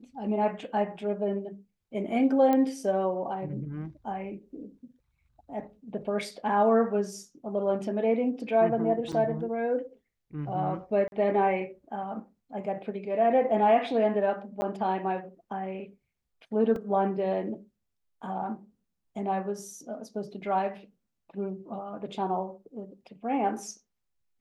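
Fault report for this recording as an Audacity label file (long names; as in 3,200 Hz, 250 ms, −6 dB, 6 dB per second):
2.530000	2.530000	click −15 dBFS
9.120000	9.130000	drop-out 6.8 ms
11.080000	11.120000	drop-out 41 ms
14.610000	14.620000	drop-out 10 ms
16.760000	16.760000	drop-out 2.2 ms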